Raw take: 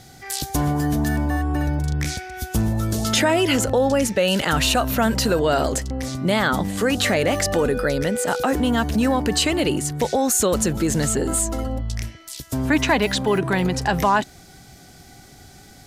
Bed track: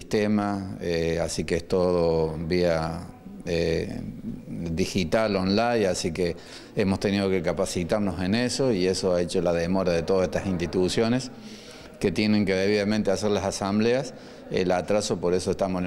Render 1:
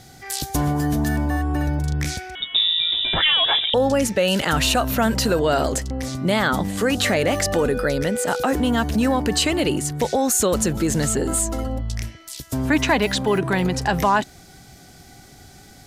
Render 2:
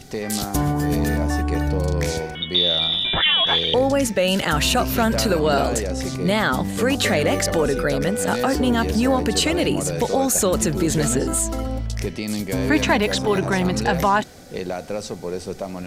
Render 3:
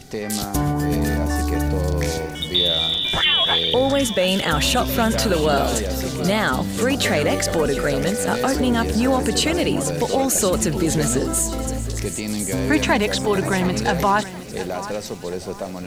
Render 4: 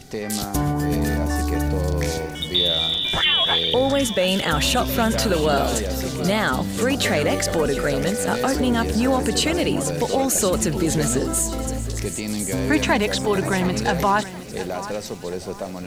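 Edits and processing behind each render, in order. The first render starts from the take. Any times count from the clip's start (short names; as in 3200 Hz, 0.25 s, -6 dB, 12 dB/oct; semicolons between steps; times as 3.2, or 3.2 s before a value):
2.35–3.74 inverted band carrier 3700 Hz
add bed track -4.5 dB
thin delay 1.056 s, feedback 37%, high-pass 4800 Hz, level -7 dB; lo-fi delay 0.718 s, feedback 35%, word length 7-bit, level -14 dB
gain -1 dB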